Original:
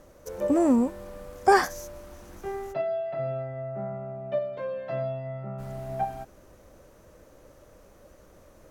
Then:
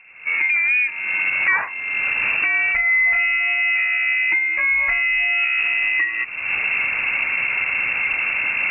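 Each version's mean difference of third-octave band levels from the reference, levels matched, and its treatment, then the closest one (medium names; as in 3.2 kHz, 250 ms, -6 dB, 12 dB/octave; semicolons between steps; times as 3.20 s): 15.0 dB: recorder AGC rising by 47 dB/s; frequency inversion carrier 2.7 kHz; in parallel at +1 dB: peak limiter -16 dBFS, peak gain reduction 10 dB; on the sum: trim -4 dB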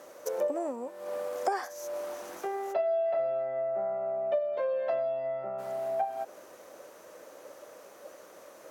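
7.0 dB: compression 6:1, threshold -39 dBFS, peak gain reduction 23 dB; high-pass 450 Hz 12 dB/octave; dynamic bell 590 Hz, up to +7 dB, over -56 dBFS, Q 1.1; trim +6.5 dB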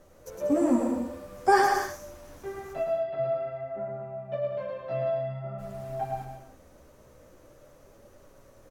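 3.0 dB: de-hum 87.35 Hz, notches 35; chorus voices 2, 0.5 Hz, delay 12 ms, depth 4.9 ms; on a send: bouncing-ball echo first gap 110 ms, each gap 0.7×, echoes 5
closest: third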